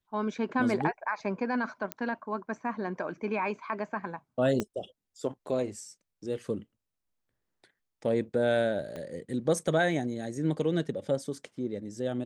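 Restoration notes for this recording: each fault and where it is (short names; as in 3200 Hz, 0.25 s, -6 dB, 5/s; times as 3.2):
1.92 pop -16 dBFS
4.6 pop -16 dBFS
8.96 pop -26 dBFS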